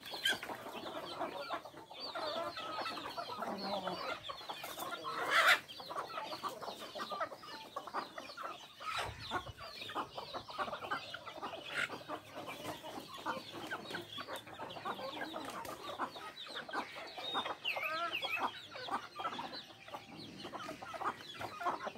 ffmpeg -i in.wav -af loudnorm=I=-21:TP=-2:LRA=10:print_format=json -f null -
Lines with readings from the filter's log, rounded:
"input_i" : "-40.9",
"input_tp" : "-15.5",
"input_lra" : "7.9",
"input_thresh" : "-50.9",